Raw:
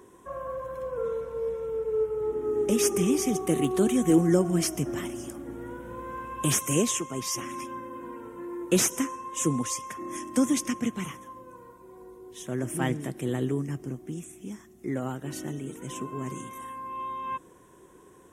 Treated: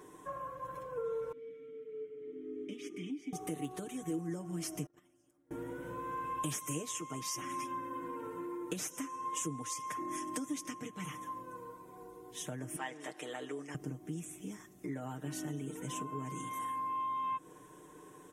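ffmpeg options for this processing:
-filter_complex "[0:a]asettb=1/sr,asplit=3[a][b][c];[a]atrim=end=1.324[d];[b]atrim=start=1.32:end=3.33,asetpts=PTS-STARTPTS,afade=t=in:d=0.004:c=qsin,afade=t=out:st=2.006:d=0.004:c=qsin,asplit=3[e][f][g];[e]bandpass=f=270:t=q:w=8,volume=0dB[h];[f]bandpass=f=2.29k:t=q:w=8,volume=-6dB[i];[g]bandpass=f=3.01k:t=q:w=8,volume=-9dB[j];[h][i][j]amix=inputs=3:normalize=0[k];[c]atrim=start=3.326[l];[d][k]acrossfade=d=0.004:c1=hsin:c2=qsin[m];[m][l]acrossfade=d=0.004:c1=qsin:c2=hsin,asettb=1/sr,asplit=3[n][o][p];[n]atrim=end=4.864[q];[o]atrim=start=4.86:end=5.51,asetpts=PTS-STARTPTS,afade=t=in:d=0.004:c=qsin,afade=t=out:st=0.646:d=0.004:c=qsin,agate=range=-33dB:threshold=-28dB:ratio=16:release=100:detection=peak[r];[p]atrim=start=5.506[s];[q][r]acrossfade=d=0.004:c1=hsin:c2=qsin[t];[t][s]acrossfade=d=0.004:c1=qsin:c2=hsin,asettb=1/sr,asplit=3[u][v][w];[u]atrim=end=12.764[x];[v]atrim=start=12.76:end=13.75,asetpts=PTS-STARTPTS,afade=t=in:d=0.004:c=qsin,afade=t=out:st=0.986:d=0.004:c=qsin,highpass=580,lowpass=7.1k[y];[w]atrim=start=13.746[z];[x][y]acrossfade=d=0.004:c1=hsin:c2=qsin[aa];[aa][z]acrossfade=d=0.004:c1=qsin:c2=hsin,acompressor=threshold=-37dB:ratio=6,lowshelf=f=110:g=-5.5,aecho=1:1:6.6:0.75,volume=-1.5dB"

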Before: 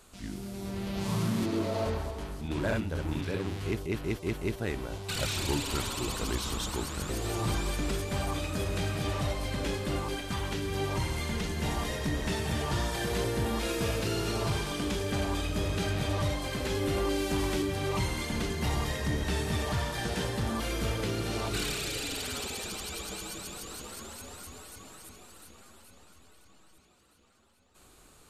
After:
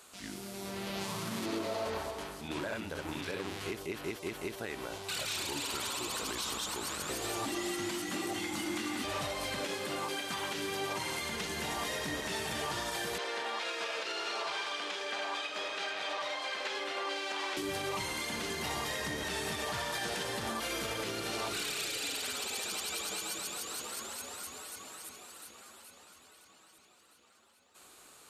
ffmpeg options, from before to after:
-filter_complex "[0:a]asettb=1/sr,asplit=3[a][b][c];[a]atrim=end=7.454[d];[b]atrim=start=7.45:end=9.04,asetpts=PTS-STARTPTS,afade=t=in:d=0.004:c=qsin,afade=t=out:st=1.586:d=0.004:c=qsin,afreqshift=-400[e];[c]atrim=start=9.036[f];[d][e]acrossfade=d=0.004:c1=hsin:c2=qsin[g];[g][f]acrossfade=d=0.004:c1=qsin:c2=hsin,asettb=1/sr,asplit=3[h][i][j];[h]atrim=end=9.604[k];[i]atrim=start=9.6:end=11.22,asetpts=PTS-STARTPTS,afade=t=in:d=0.004:c=qsin,afade=t=out:st=1.616:d=0.004:c=qsin,highpass=120[l];[j]atrim=start=11.216[m];[k][l]acrossfade=d=0.004:c1=hsin:c2=qsin[n];[n][m]acrossfade=d=0.004:c1=qsin:c2=hsin,asettb=1/sr,asplit=3[o][p][q];[o]atrim=end=13.184[r];[p]atrim=start=13.18:end=17.57,asetpts=PTS-STARTPTS,afade=t=in:d=0.004:c=qsin,afade=t=out:st=4.386:d=0.004:c=qsin,highpass=610,lowpass=4.5k[s];[q]atrim=start=17.566[t];[r][s]acrossfade=d=0.004:c1=hsin:c2=qsin[u];[u][t]acrossfade=d=0.004:c1=qsin:c2=hsin,highpass=f=620:p=1,alimiter=level_in=6dB:limit=-24dB:level=0:latency=1:release=82,volume=-6dB,volume=3.5dB"

